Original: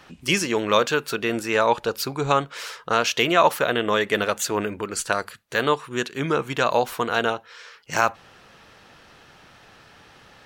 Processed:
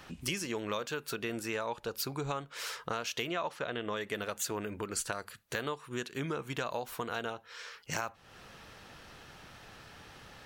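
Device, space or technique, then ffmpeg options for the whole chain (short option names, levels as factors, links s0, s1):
ASMR close-microphone chain: -filter_complex "[0:a]lowshelf=f=120:g=6.5,acompressor=threshold=0.0251:ratio=4,highshelf=f=8200:g=6.5,asettb=1/sr,asplit=3[s0][s1][s2];[s0]atrim=end=3.294[s3];[s1]atrim=start=3.29:end=3.97,asetpts=PTS-STARTPTS,afade=t=in:d=0.004:c=qsin,afade=t=out:st=0.676:d=0.004:c=qsin,lowpass=6000[s4];[s2]atrim=start=3.966[s5];[s3][s4]acrossfade=d=0.004:c1=hsin:c2=qsin[s6];[s6][s5]acrossfade=d=0.004:c1=qsin:c2=hsin,volume=0.708"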